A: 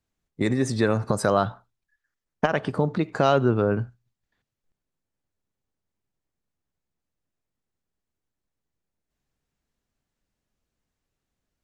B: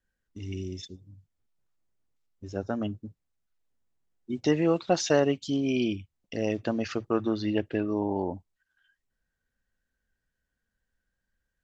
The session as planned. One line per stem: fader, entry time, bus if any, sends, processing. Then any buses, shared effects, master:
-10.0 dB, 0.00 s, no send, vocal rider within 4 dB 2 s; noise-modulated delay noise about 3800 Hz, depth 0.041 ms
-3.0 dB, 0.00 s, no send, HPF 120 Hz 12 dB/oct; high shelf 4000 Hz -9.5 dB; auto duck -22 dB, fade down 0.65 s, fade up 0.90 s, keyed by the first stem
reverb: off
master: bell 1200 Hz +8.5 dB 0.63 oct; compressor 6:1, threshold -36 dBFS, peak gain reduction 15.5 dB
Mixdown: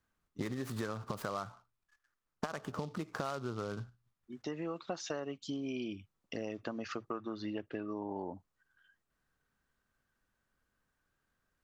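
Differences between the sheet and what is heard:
stem A -10.0 dB -> -2.0 dB; stem B: missing high shelf 4000 Hz -9.5 dB

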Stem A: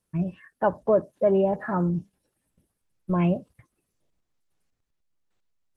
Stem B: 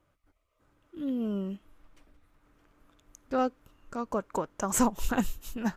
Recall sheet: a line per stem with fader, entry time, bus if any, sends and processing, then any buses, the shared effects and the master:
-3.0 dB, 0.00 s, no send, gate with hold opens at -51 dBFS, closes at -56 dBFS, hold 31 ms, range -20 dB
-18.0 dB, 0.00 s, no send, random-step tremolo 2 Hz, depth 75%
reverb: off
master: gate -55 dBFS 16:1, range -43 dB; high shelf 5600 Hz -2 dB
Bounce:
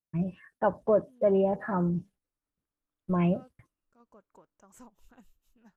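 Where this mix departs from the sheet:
stem B -18.0 dB -> -26.5 dB; master: missing gate -55 dBFS 16:1, range -43 dB

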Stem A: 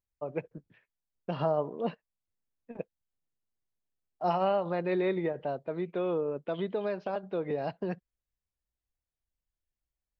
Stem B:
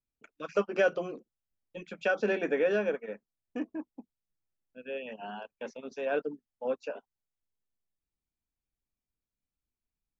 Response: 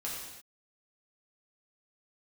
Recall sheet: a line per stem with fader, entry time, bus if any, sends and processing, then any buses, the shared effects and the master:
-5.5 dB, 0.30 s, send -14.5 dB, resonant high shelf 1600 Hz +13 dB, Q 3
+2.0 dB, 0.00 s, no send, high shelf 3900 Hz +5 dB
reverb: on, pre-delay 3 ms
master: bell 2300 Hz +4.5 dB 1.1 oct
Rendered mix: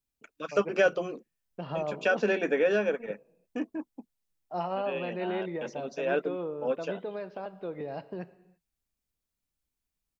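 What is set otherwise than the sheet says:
stem A: missing resonant high shelf 1600 Hz +13 dB, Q 3; master: missing bell 2300 Hz +4.5 dB 1.1 oct

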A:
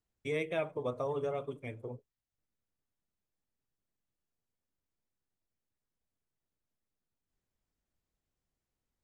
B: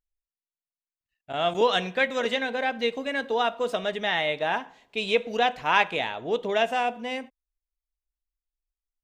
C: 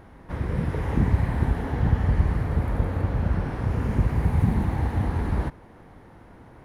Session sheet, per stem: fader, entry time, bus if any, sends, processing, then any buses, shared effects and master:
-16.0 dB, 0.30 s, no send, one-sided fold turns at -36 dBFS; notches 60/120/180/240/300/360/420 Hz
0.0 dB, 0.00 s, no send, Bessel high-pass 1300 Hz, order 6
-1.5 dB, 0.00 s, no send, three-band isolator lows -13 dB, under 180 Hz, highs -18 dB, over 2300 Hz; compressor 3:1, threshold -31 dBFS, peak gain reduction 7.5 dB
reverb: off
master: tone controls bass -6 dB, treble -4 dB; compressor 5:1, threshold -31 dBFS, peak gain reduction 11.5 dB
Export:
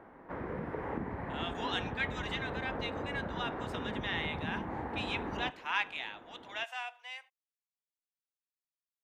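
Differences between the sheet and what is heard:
stem A: muted; stem B 0.0 dB -> -7.5 dB; master: missing compressor 5:1, threshold -31 dBFS, peak gain reduction 11.5 dB

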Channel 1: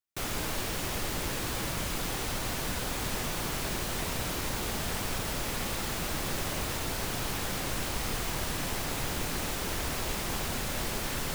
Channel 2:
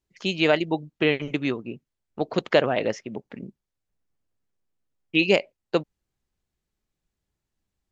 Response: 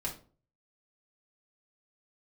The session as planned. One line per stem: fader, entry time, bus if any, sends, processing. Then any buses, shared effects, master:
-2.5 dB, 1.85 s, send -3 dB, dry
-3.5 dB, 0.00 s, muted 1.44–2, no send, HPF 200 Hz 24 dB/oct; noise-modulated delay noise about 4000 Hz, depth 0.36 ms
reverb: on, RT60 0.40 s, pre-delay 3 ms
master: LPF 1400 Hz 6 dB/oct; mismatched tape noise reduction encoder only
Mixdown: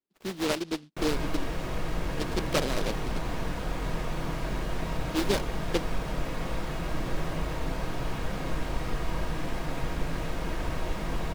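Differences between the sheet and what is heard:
stem 1: entry 1.85 s -> 0.80 s; master: missing mismatched tape noise reduction encoder only

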